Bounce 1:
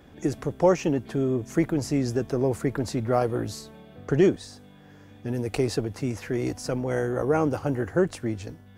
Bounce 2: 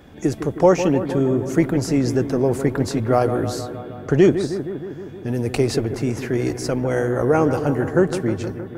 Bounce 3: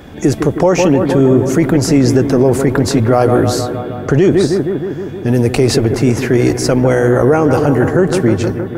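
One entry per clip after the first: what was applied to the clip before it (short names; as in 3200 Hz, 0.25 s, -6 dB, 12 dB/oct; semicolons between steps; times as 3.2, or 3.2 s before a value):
analogue delay 0.156 s, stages 2048, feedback 71%, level -10 dB; gain +5.5 dB
maximiser +12 dB; gain -1 dB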